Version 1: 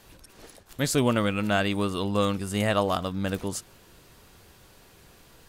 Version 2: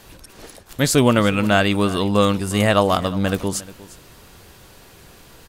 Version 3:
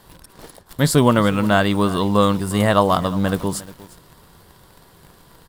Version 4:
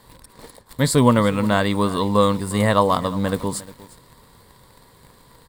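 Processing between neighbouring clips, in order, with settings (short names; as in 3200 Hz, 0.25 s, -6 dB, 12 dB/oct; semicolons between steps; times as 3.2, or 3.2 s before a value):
echo 0.355 s -18.5 dB; gain +8 dB
thirty-one-band EQ 160 Hz +7 dB, 1000 Hz +6 dB, 2500 Hz -9 dB, 6300 Hz -8 dB; in parallel at -5.5 dB: bit-crush 6-bit; on the sum: gain -4 dB
ripple EQ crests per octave 0.98, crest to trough 6 dB; gain -2 dB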